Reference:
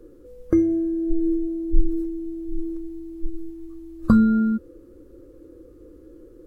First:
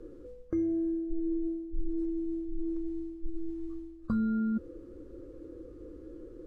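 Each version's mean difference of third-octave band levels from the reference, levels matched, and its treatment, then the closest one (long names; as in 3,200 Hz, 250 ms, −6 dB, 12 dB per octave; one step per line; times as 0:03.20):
3.5 dB: high-frequency loss of the air 64 metres
reversed playback
downward compressor 4 to 1, threshold −30 dBFS, peak gain reduction 18 dB
reversed playback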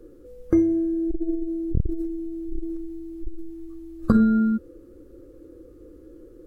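1.0 dB: notch filter 1,000 Hz, Q 13
saturating transformer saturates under 140 Hz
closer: second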